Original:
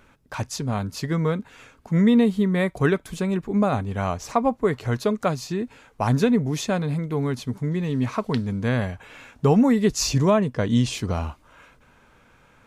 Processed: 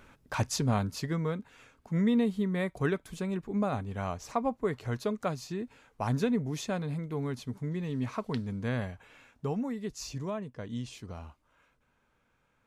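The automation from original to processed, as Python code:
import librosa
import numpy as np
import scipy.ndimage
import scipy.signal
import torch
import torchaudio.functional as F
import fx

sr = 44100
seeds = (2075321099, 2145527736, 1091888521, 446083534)

y = fx.gain(x, sr, db=fx.line((0.67, -1.0), (1.24, -9.0), (8.8, -9.0), (9.72, -17.0)))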